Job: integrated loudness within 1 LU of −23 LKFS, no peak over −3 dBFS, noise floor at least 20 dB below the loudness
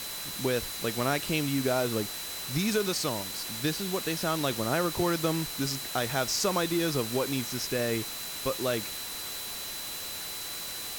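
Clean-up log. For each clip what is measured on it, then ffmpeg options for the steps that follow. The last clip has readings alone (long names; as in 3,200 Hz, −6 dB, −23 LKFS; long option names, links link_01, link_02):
interfering tone 4,000 Hz; level of the tone −41 dBFS; background noise floor −38 dBFS; target noise floor −50 dBFS; integrated loudness −30.0 LKFS; sample peak −13.0 dBFS; target loudness −23.0 LKFS
→ -af "bandreject=frequency=4000:width=30"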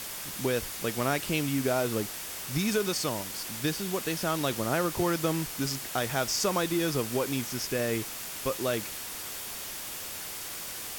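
interfering tone none found; background noise floor −39 dBFS; target noise floor −50 dBFS
→ -af "afftdn=noise_reduction=11:noise_floor=-39"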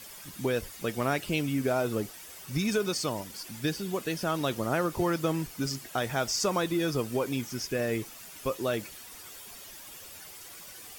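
background noise floor −47 dBFS; target noise floor −51 dBFS
→ -af "afftdn=noise_reduction=6:noise_floor=-47"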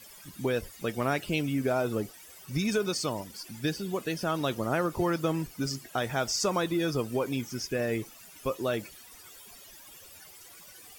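background noise floor −51 dBFS; integrated loudness −31.0 LKFS; sample peak −14.5 dBFS; target loudness −23.0 LKFS
→ -af "volume=8dB"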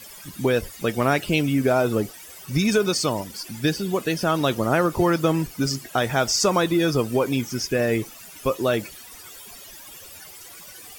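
integrated loudness −23.0 LKFS; sample peak −6.5 dBFS; background noise floor −43 dBFS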